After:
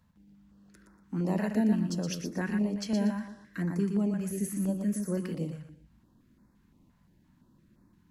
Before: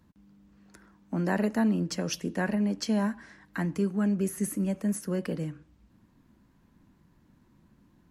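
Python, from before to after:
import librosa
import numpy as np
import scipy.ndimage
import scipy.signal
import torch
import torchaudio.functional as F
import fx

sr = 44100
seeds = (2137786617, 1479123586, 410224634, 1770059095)

y = fx.hpss(x, sr, part='percussive', gain_db=-4)
y = fx.echo_feedback(y, sr, ms=119, feedback_pct=28, wet_db=-5.5)
y = fx.filter_held_notch(y, sr, hz=5.8, low_hz=330.0, high_hz=3000.0)
y = y * 10.0 ** (-1.0 / 20.0)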